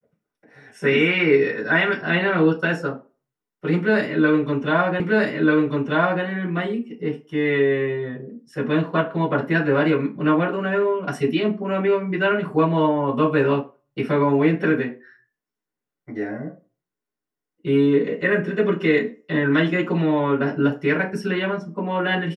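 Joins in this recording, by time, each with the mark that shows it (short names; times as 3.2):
5 repeat of the last 1.24 s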